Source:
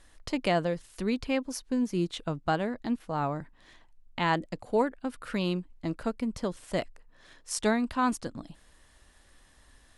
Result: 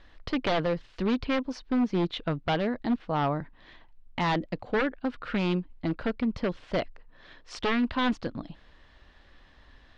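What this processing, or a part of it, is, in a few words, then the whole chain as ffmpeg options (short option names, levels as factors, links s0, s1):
synthesiser wavefolder: -af "aeval=exprs='0.0668*(abs(mod(val(0)/0.0668+3,4)-2)-1)':c=same,lowpass=f=4200:w=0.5412,lowpass=f=4200:w=1.3066,volume=1.58"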